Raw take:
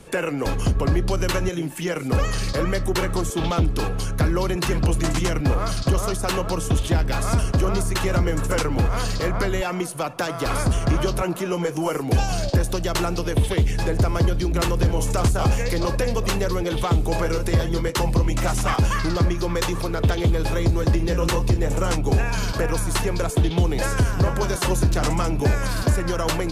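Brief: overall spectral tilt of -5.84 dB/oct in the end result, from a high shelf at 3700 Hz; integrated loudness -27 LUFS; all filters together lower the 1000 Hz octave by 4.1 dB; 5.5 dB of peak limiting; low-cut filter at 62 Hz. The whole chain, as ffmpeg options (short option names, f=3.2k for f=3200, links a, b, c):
-af "highpass=62,equalizer=f=1k:t=o:g=-5,highshelf=f=3.7k:g=-5.5,volume=-1dB,alimiter=limit=-15.5dB:level=0:latency=1"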